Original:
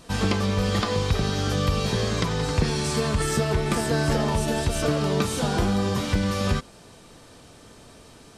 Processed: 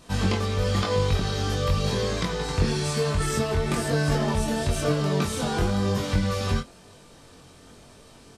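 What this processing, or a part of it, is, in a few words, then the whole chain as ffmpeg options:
double-tracked vocal: -filter_complex "[0:a]asplit=2[link_01][link_02];[link_02]adelay=22,volume=-11dB[link_03];[link_01][link_03]amix=inputs=2:normalize=0,flanger=delay=20:depth=3:speed=1,volume=1dB"

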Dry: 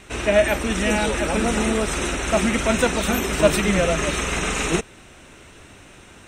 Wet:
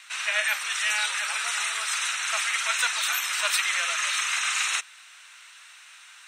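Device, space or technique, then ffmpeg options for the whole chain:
headphones lying on a table: -af "highpass=frequency=1200:width=0.5412,highpass=frequency=1200:width=1.3066,equalizer=frequency=4300:width_type=o:width=0.5:gain=5"

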